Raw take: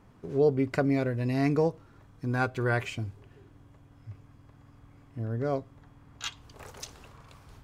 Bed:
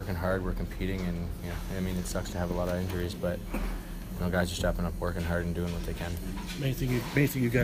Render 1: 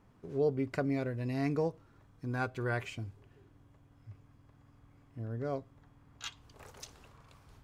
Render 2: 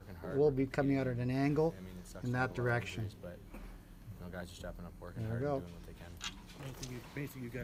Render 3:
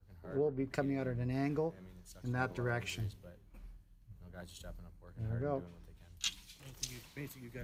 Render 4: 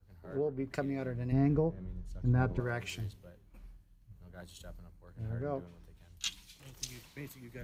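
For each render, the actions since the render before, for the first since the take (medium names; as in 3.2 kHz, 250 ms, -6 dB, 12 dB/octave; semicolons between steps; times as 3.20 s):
trim -6.5 dB
add bed -17 dB
compression 6:1, threshold -33 dBFS, peak gain reduction 8.5 dB; three bands expanded up and down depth 100%
1.32–2.60 s: tilt EQ -3.5 dB/octave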